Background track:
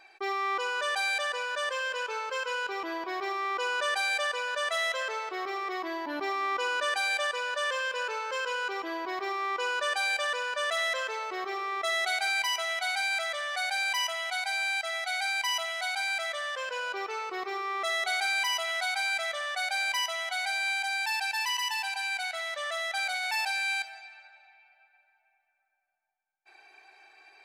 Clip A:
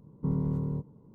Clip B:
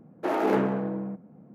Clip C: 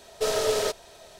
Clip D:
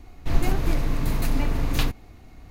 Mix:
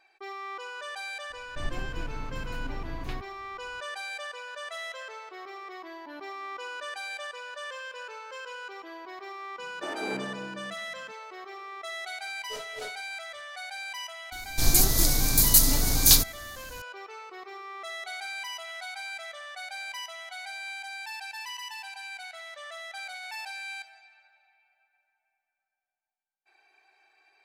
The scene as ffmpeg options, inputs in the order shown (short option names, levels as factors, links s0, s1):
-filter_complex "[4:a]asplit=2[s0][s1];[0:a]volume=0.376[s2];[s0]lowpass=f=3300:p=1[s3];[3:a]aeval=exprs='val(0)*pow(10,-22*(0.5-0.5*cos(2*PI*3.7*n/s))/20)':c=same[s4];[s1]aexciter=amount=9.1:drive=7.8:freq=3900[s5];[s3]atrim=end=2.5,asetpts=PTS-STARTPTS,volume=0.224,afade=t=in:d=0.004:c=hsin,afade=t=out:st=2.496:d=0.004:c=hsin,adelay=1300[s6];[2:a]atrim=end=1.54,asetpts=PTS-STARTPTS,volume=0.282,afade=t=in:d=0.004:c=hsin,afade=t=out:st=1.536:d=0.004:c=hsin,adelay=9580[s7];[s4]atrim=end=1.19,asetpts=PTS-STARTPTS,volume=0.224,afade=t=in:d=0.004:c=hsin,afade=t=out:st=1.186:d=0.004:c=hsin,adelay=12290[s8];[s5]atrim=end=2.5,asetpts=PTS-STARTPTS,volume=0.708,afade=t=in:d=0.004:c=hsin,afade=t=out:st=2.496:d=0.004:c=hsin,adelay=14320[s9];[s2][s6][s7][s8][s9]amix=inputs=5:normalize=0"